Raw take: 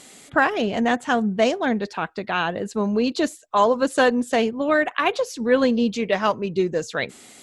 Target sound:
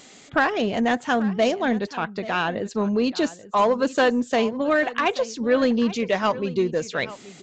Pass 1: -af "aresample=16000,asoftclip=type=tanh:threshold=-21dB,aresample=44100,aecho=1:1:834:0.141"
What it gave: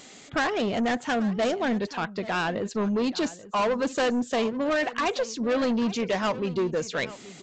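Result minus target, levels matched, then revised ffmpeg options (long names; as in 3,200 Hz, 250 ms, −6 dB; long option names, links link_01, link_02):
soft clipping: distortion +11 dB
-af "aresample=16000,asoftclip=type=tanh:threshold=-10.5dB,aresample=44100,aecho=1:1:834:0.141"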